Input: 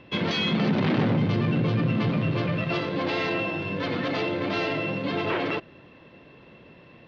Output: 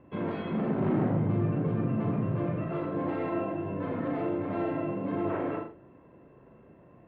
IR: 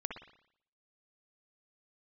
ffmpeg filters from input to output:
-filter_complex "[0:a]lowpass=1300,aemphasis=mode=reproduction:type=75kf[link_01];[1:a]atrim=start_sample=2205,afade=type=out:start_time=0.32:duration=0.01,atrim=end_sample=14553,asetrate=66150,aresample=44100[link_02];[link_01][link_02]afir=irnorm=-1:irlink=0"

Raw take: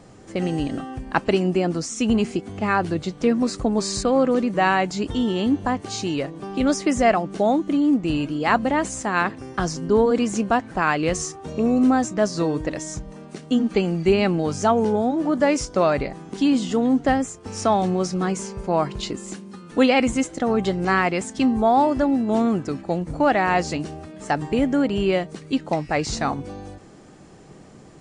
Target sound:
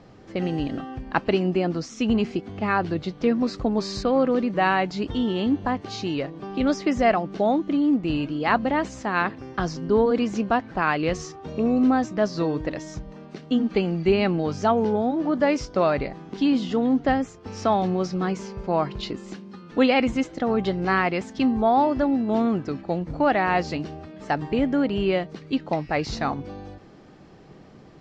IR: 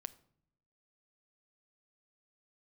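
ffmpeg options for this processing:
-af "lowpass=frequency=5100:width=0.5412,lowpass=frequency=5100:width=1.3066,volume=-2dB"

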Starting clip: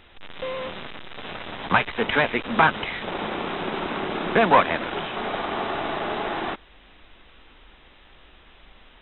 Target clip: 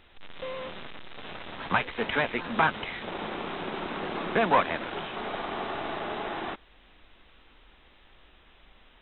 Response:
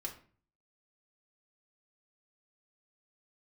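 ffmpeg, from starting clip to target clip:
-filter_complex "[0:a]asplit=2[link_01][link_02];[link_02]asetrate=48000,aresample=44100[link_03];[1:a]atrim=start_sample=2205[link_04];[link_03][link_04]afir=irnorm=-1:irlink=0,volume=-16.5dB[link_05];[link_01][link_05]amix=inputs=2:normalize=0,volume=-6dB"

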